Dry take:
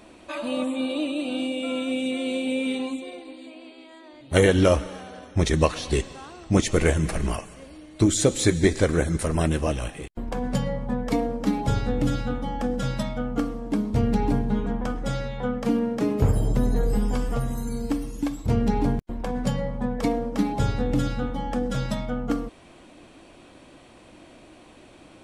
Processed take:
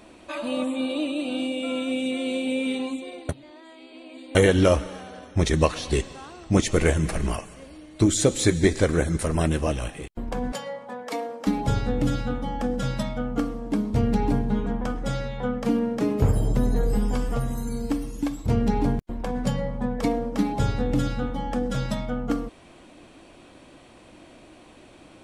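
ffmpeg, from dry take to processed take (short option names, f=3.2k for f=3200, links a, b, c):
-filter_complex "[0:a]asettb=1/sr,asplit=3[a][b][c];[a]atrim=end=10.524[d];[b]atrim=start=10.52:end=11.47,asetpts=PTS-STARTPTS,afade=t=in:d=0.004:c=qsin,afade=t=out:st=0.946:d=0.004:c=qsin,highpass=540[e];[c]atrim=start=11.466[f];[d][e]acrossfade=d=0.004:c1=hsin:c2=qsin[g];[g][f]acrossfade=d=0.004:c1=qsin:c2=hsin,asplit=3[h][i][j];[h]atrim=end=3.292[k];[i]atrim=start=3.288:end=4.352,asetpts=PTS-STARTPTS,areverse[l];[j]atrim=start=4.348[m];[k][l]acrossfade=d=0.004:c1=hsin:c2=hsin[n];[n][m]acrossfade=d=0.004:c1=hsin:c2=hsin"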